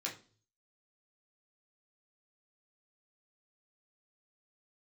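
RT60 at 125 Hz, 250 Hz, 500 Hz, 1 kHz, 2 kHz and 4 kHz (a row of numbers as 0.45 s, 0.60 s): 0.85 s, 0.50 s, 0.45 s, 0.35 s, 0.30 s, 0.40 s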